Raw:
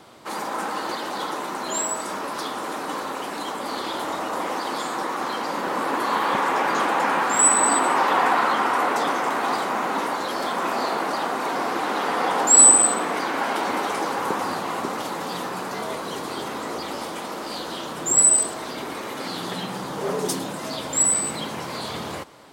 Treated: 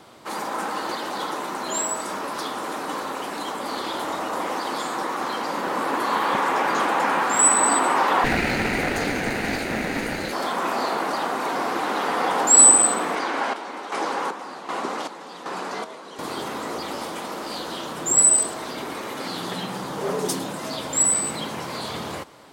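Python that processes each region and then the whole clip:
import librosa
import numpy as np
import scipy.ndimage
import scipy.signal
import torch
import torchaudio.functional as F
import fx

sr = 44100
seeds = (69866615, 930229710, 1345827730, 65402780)

y = fx.chain(x, sr, fx.lower_of_two(delay_ms=0.45),
    fx.peak_eq(hz=210.0, db=4.5, octaves=0.79), at=(8.24, 10.33))
y = fx.chain(y, sr, fx.chopper(hz=1.3, depth_pct=65, duty_pct=50),
    fx.bandpass_edges(low_hz=230.0, high_hz=8000.0), at=(13.15, 16.19))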